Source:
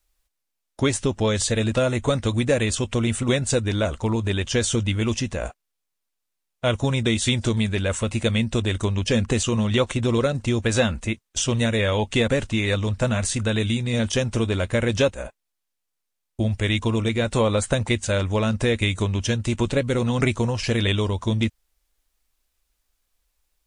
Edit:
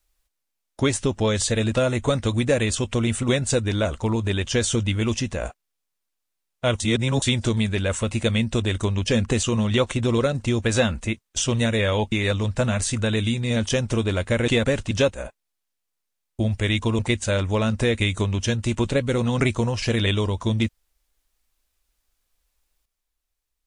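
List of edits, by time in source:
0:06.80–0:07.22: reverse
0:12.12–0:12.55: move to 0:14.91
0:16.99–0:17.80: remove

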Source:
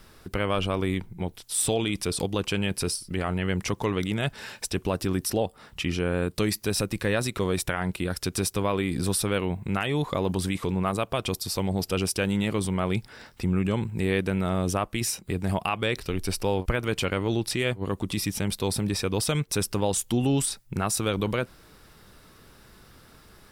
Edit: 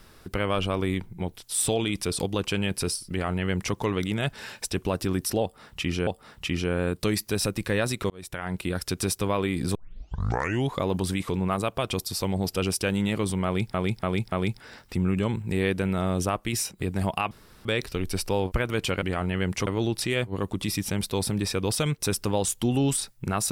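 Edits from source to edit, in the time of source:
0:03.10–0:03.75: duplicate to 0:17.16
0:05.42–0:06.07: repeat, 2 plays
0:07.45–0:08.00: fade in
0:09.10: tape start 0.98 s
0:12.80–0:13.09: repeat, 4 plays
0:15.79: splice in room tone 0.34 s

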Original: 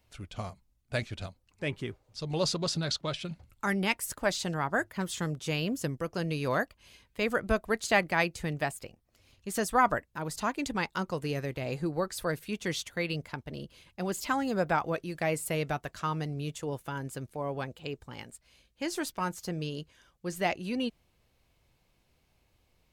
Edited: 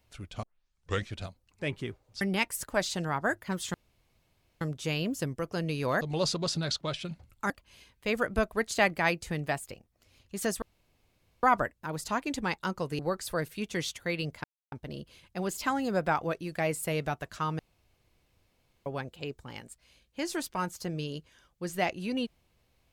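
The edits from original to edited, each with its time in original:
0:00.43: tape start 0.66 s
0:02.21–0:03.70: move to 0:06.63
0:05.23: splice in room tone 0.87 s
0:09.75: splice in room tone 0.81 s
0:11.31–0:11.90: remove
0:13.35: splice in silence 0.28 s
0:16.22–0:17.49: fill with room tone

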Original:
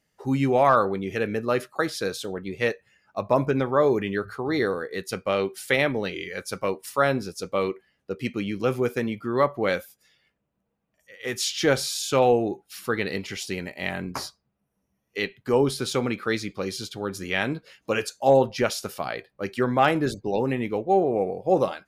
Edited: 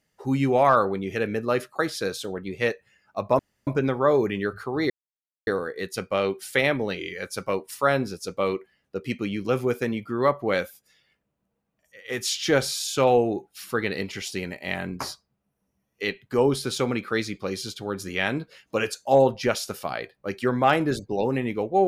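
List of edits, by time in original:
0:03.39: splice in room tone 0.28 s
0:04.62: splice in silence 0.57 s

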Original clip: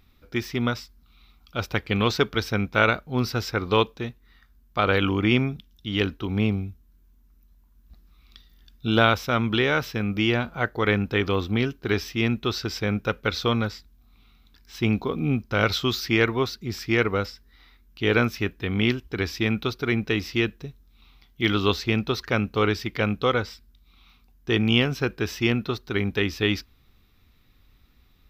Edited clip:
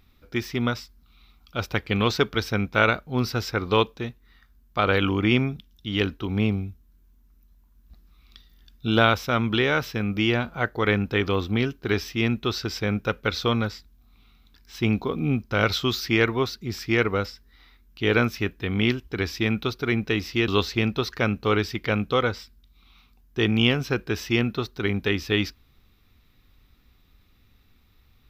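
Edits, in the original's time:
0:20.48–0:21.59: remove

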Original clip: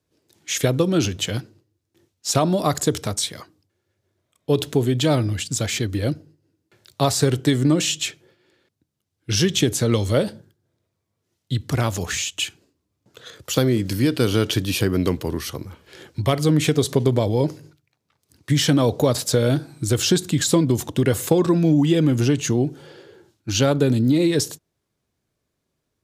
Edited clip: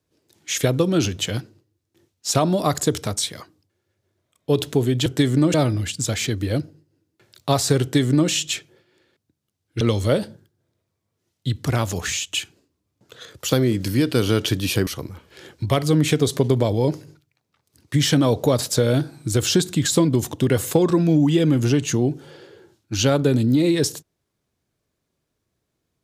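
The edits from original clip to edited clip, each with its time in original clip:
0:07.34–0:07.82: duplicate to 0:05.06
0:09.33–0:09.86: remove
0:14.92–0:15.43: remove

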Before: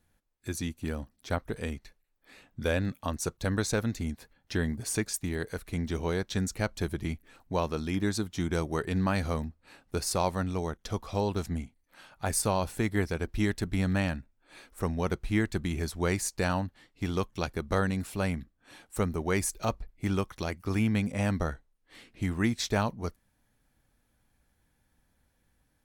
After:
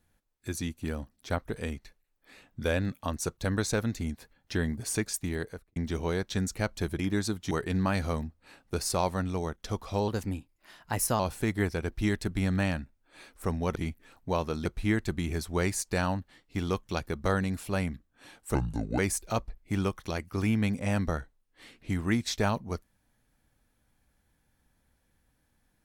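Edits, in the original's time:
0:05.36–0:05.76: fade out and dull
0:06.99–0:07.89: move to 0:15.12
0:08.41–0:08.72: remove
0:11.29–0:12.56: play speed 114%
0:19.01–0:19.31: play speed 68%

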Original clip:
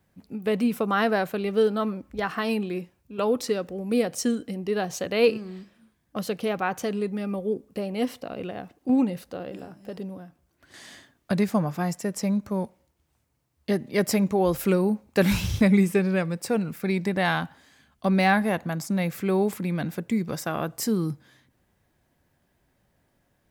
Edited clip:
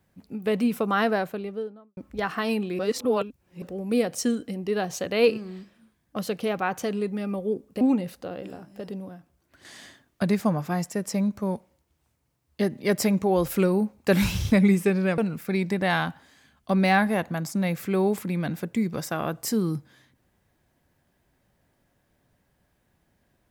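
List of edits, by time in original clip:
0:00.97–0:01.97: fade out and dull
0:02.79–0:03.62: reverse
0:07.81–0:08.90: remove
0:16.27–0:16.53: remove

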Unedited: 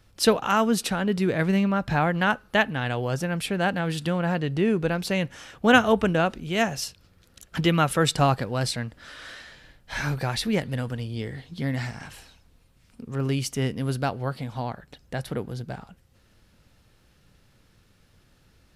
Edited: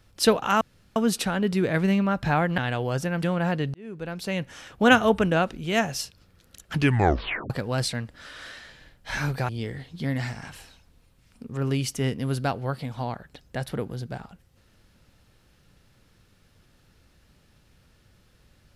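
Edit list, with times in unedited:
0:00.61: splice in room tone 0.35 s
0:02.23–0:02.76: remove
0:03.41–0:04.06: remove
0:04.57–0:05.44: fade in
0:07.56: tape stop 0.77 s
0:10.32–0:11.07: remove

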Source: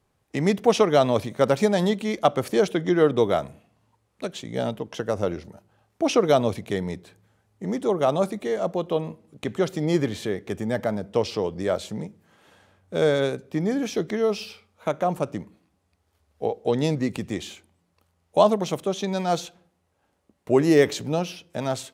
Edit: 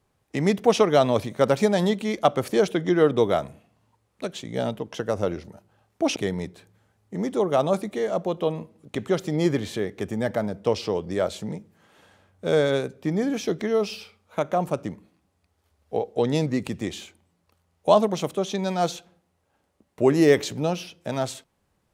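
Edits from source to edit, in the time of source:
0:06.16–0:06.65: remove

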